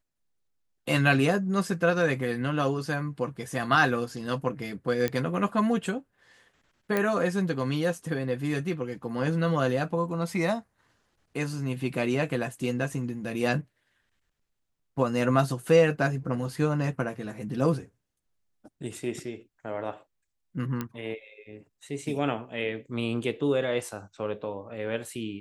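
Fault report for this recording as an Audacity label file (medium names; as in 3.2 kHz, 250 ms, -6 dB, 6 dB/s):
5.080000	5.080000	pop -13 dBFS
6.970000	6.970000	pop -13 dBFS
20.810000	20.810000	pop -17 dBFS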